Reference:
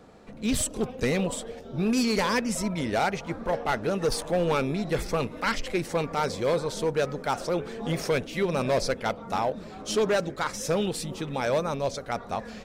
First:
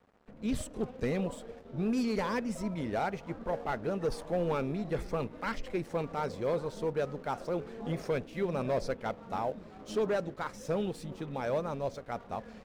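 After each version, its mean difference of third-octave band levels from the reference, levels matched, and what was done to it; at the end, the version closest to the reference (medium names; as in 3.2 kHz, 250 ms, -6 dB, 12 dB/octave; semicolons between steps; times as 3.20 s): 3.0 dB: treble shelf 2.3 kHz -11.5 dB; crossover distortion -51.5 dBFS; trim -5 dB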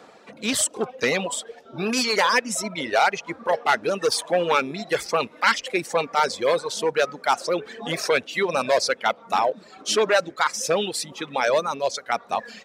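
6.5 dB: reverb removal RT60 1.7 s; frequency weighting A; trim +8 dB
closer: first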